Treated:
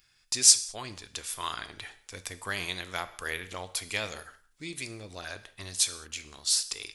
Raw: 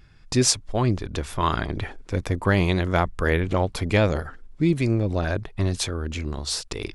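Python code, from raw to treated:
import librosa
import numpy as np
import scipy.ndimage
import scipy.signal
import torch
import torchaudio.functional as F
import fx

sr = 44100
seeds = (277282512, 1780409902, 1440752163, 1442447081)

y = librosa.effects.preemphasis(x, coef=0.97, zi=[0.0])
y = fx.rev_gated(y, sr, seeds[0], gate_ms=230, shape='falling', drr_db=11.0)
y = y * 10.0 ** (4.5 / 20.0)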